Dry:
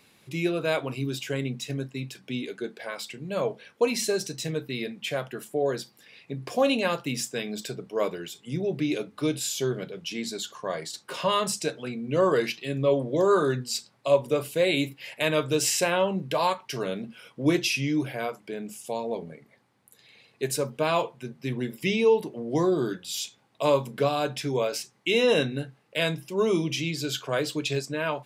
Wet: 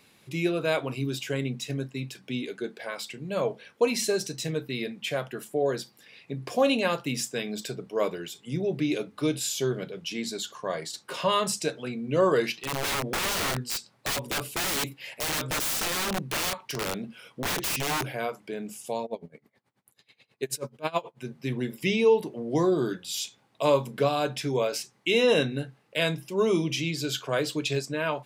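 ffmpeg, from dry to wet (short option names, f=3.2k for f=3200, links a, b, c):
-filter_complex "[0:a]asettb=1/sr,asplit=3[a][b][c];[a]atrim=end=12.564[d];[b]atrim=start=12.56:end=18.06,asetpts=PTS-STARTPTS,afade=t=in:d=0.004:c=qsin,afade=t=out:st=5.496:d=0.004:c=qsin,aeval=exprs='(mod(15*val(0)+1,2)-1)/15':c=same[e];[c]atrim=start=18.056[f];[d][e]acrossfade=d=0.004:c1=hsin:c2=qsin[g];[g][f]acrossfade=d=0.004:c1=qsin:c2=hsin,asplit=3[h][i][j];[h]afade=t=out:st=19.05:d=0.02[k];[i]aeval=exprs='val(0)*pow(10,-24*(0.5-0.5*cos(2*PI*9.3*n/s))/20)':c=same,afade=t=in:st=19.05:d=0.02,afade=t=out:st=21.18:d=0.02[l];[j]afade=t=in:st=21.18:d=0.02[m];[k][l][m]amix=inputs=3:normalize=0"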